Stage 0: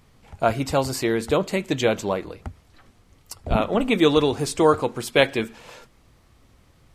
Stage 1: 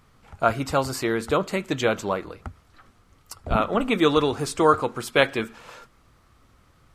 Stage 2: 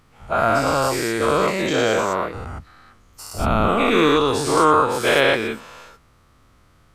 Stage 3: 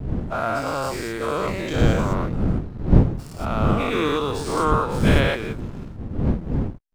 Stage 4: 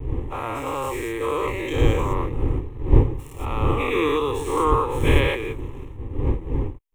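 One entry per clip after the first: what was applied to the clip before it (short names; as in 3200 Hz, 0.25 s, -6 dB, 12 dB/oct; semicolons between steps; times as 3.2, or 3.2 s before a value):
bell 1300 Hz +8.5 dB 0.6 oct; gain -2.5 dB
spectral dilation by 0.24 s; gain -3 dB
wind noise 190 Hz -17 dBFS; backlash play -30 dBFS; gain -6 dB
fixed phaser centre 980 Hz, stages 8; gain +2.5 dB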